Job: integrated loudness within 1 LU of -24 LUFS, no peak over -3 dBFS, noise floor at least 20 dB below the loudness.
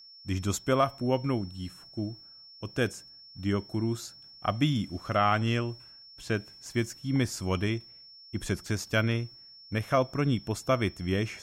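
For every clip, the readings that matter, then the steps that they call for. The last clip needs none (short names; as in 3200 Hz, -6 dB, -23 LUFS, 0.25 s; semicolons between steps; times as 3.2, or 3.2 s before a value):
steady tone 5400 Hz; tone level -49 dBFS; loudness -30.5 LUFS; peak -12.5 dBFS; loudness target -24.0 LUFS
-> notch 5400 Hz, Q 30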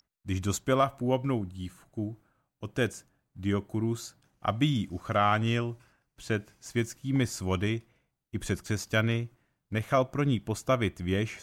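steady tone none; loudness -30.5 LUFS; peak -12.5 dBFS; loudness target -24.0 LUFS
-> gain +6.5 dB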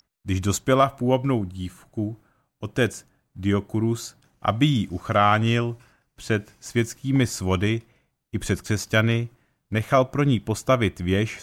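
loudness -24.0 LUFS; peak -6.0 dBFS; noise floor -76 dBFS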